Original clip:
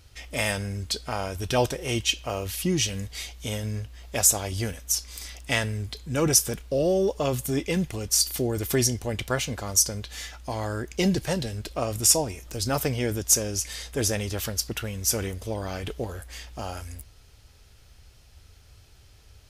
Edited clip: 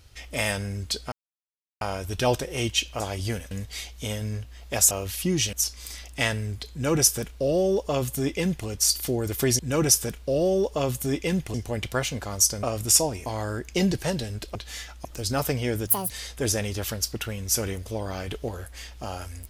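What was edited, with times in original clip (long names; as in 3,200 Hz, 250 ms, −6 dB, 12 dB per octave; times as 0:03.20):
0:01.12: splice in silence 0.69 s
0:02.31–0:02.93: swap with 0:04.33–0:04.84
0:06.03–0:07.98: duplicate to 0:08.90
0:09.99–0:10.49: swap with 0:11.78–0:12.41
0:13.23–0:13.66: play speed 185%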